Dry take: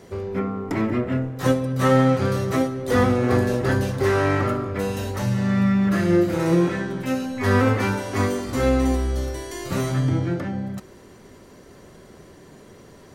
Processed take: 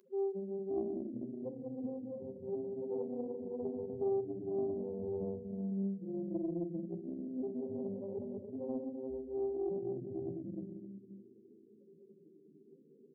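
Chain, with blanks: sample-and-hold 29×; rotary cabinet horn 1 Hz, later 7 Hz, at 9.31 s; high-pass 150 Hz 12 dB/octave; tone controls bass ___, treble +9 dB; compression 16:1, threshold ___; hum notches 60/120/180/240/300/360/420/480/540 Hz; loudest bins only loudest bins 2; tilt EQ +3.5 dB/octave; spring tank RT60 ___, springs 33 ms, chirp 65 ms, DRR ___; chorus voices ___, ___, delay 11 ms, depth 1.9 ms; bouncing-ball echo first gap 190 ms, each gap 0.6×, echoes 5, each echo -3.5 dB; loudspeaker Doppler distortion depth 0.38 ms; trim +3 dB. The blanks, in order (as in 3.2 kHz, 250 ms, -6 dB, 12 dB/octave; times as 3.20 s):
+2 dB, -24 dBFS, 2.3 s, 5 dB, 4, 0.66 Hz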